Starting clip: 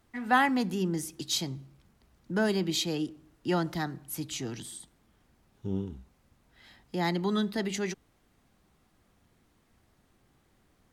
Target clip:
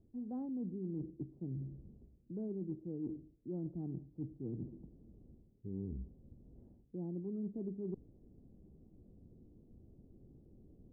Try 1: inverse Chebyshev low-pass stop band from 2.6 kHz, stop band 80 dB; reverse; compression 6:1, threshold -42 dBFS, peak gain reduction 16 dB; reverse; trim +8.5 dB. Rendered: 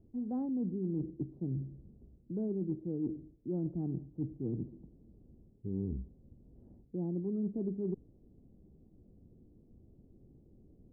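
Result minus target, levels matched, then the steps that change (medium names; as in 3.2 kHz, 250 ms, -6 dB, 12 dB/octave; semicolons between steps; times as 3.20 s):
compression: peak gain reduction -6 dB
change: compression 6:1, threshold -49 dBFS, peak gain reduction 21.5 dB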